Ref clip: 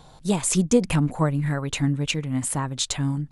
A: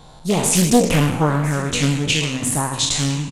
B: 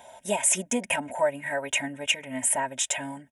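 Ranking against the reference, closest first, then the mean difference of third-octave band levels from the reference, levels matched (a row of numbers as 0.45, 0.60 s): B, A; 7.0, 9.0 dB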